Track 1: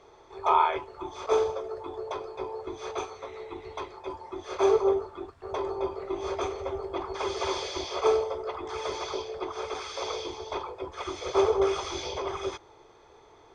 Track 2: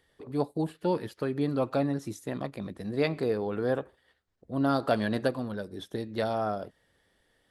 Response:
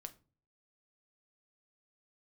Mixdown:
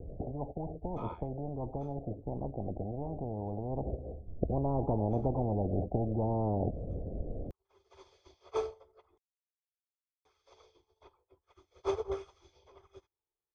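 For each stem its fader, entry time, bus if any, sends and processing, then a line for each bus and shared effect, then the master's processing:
-8.5 dB, 0.50 s, muted 9.18–10.25, no send, upward expander 2.5:1, over -44 dBFS; auto duck -23 dB, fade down 2.00 s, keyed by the second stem
3.62 s -9 dB -> 4.06 s -2.5 dB, 0.00 s, no send, steep low-pass 710 Hz 72 dB/oct; spectral compressor 10:1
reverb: off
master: low shelf 150 Hz +12 dB

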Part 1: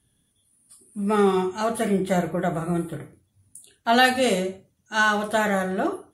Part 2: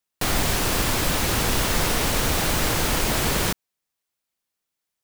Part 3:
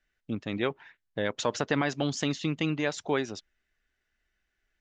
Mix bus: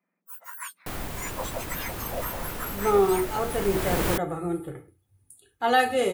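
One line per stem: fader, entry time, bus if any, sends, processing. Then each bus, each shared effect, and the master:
-3.5 dB, 1.75 s, no send, comb 2.4 ms, depth 61%
-1.5 dB, 0.65 s, no send, auto duck -10 dB, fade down 1.10 s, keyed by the third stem
+0.5 dB, 0.00 s, no send, spectrum mirrored in octaves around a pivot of 1900 Hz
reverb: off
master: bell 5200 Hz -8 dB 1.9 oct

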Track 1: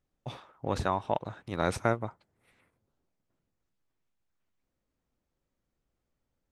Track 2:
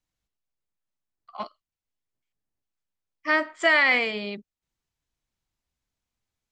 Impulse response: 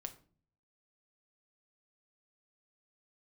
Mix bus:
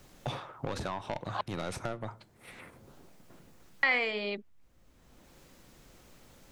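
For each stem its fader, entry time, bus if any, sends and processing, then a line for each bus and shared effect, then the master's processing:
+1.5 dB, 0.00 s, send -3.5 dB, compressor 4:1, threshold -32 dBFS, peak gain reduction 10.5 dB; soft clip -33 dBFS, distortion -7 dB
+2.5 dB, 0.00 s, muted 1.41–3.83, no send, HPF 330 Hz 12 dB/oct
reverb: on, RT60 0.45 s, pre-delay 6 ms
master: three-band squash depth 70%

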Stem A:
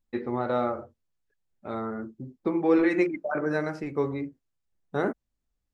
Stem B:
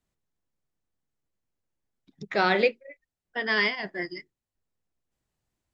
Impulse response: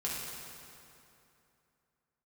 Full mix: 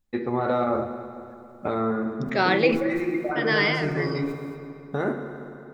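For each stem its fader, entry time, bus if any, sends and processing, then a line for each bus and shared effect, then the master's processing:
+1.0 dB, 0.00 s, send -8 dB, AGC gain up to 12 dB; limiter -14 dBFS, peak gain reduction 12 dB; compressor 2.5:1, threshold -24 dBFS, peak gain reduction 5 dB; auto duck -13 dB, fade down 0.60 s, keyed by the second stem
+0.5 dB, 0.00 s, send -21.5 dB, gate -53 dBFS, range -12 dB; sustainer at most 58 dB/s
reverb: on, RT60 2.8 s, pre-delay 3 ms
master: dry

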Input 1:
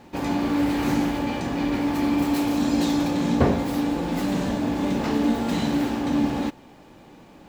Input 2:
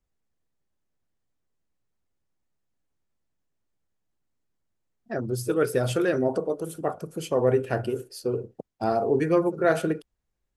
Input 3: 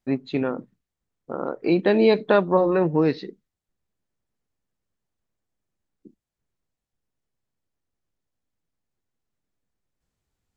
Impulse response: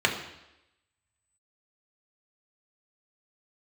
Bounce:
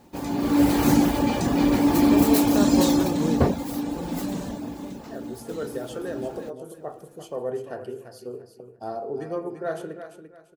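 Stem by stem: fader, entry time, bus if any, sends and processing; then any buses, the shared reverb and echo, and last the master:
-4.5 dB, 0.00 s, no send, no echo send, reverb removal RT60 0.55 s; high shelf 7100 Hz +9.5 dB; AGC gain up to 13.5 dB; auto duck -20 dB, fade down 1.65 s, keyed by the second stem
-8.5 dB, 0.00 s, send -17.5 dB, echo send -8 dB, low shelf 400 Hz -5.5 dB
-9.0 dB, 0.25 s, no send, no echo send, dry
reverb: on, RT60 0.90 s, pre-delay 3 ms
echo: feedback echo 0.343 s, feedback 29%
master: bell 2300 Hz -5.5 dB 1.8 oct

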